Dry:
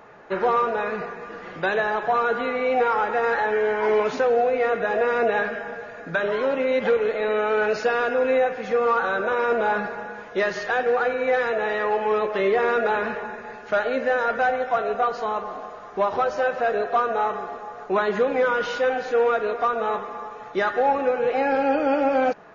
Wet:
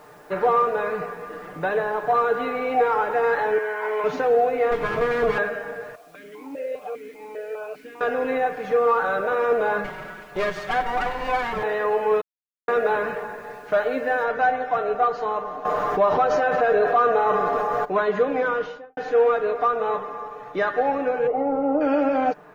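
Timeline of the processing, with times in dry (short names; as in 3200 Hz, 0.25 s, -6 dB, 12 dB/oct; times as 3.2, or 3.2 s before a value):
1.46–2.08 high shelf 2400 Hz -7.5 dB
3.58–4.04 band-pass 1600 Hz, Q 0.73
4.71–5.38 minimum comb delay 8.9 ms
5.95–8.01 vowel sequencer 5 Hz
9.84–11.63 minimum comb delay 5.3 ms
12.21–12.68 mute
14.24 noise floor step -55 dB -69 dB
15.65–17.85 fast leveller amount 70%
18.47–18.97 studio fade out
21.27–21.81 polynomial smoothing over 65 samples
whole clip: high shelf 2900 Hz -8.5 dB; comb 6.7 ms, depth 51%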